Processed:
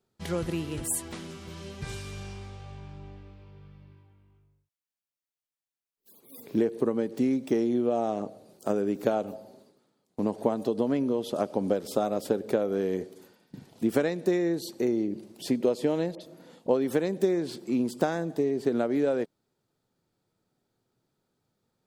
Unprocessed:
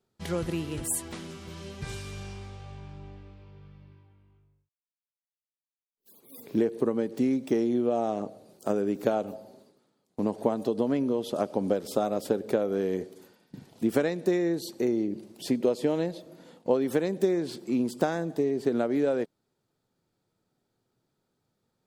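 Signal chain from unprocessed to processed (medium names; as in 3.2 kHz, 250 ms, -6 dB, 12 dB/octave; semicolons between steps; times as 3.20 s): 16.15–16.69 s: phase dispersion highs, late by 59 ms, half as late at 2.5 kHz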